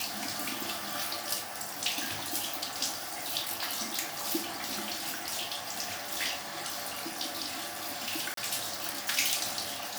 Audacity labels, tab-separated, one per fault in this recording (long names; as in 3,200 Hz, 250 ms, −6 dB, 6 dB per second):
2.940000	3.360000	clipping −30.5 dBFS
8.340000	8.370000	drop-out 33 ms